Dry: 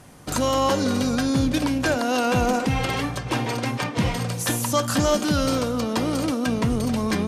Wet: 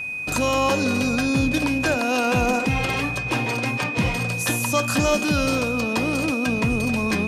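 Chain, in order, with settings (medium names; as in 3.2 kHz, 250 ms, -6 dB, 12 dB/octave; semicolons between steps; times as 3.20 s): whistle 2.5 kHz -27 dBFS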